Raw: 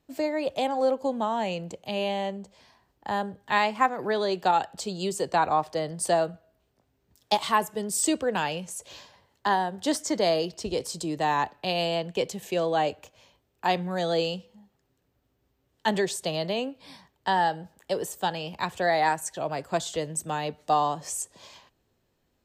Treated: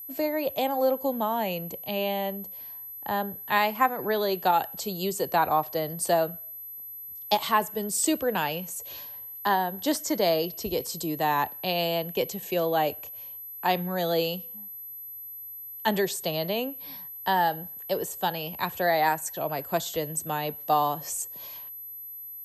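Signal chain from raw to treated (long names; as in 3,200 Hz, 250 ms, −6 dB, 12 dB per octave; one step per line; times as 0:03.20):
0:01.23–0:03.26: high-shelf EQ 11,000 Hz −7.5 dB
steady tone 12,000 Hz −38 dBFS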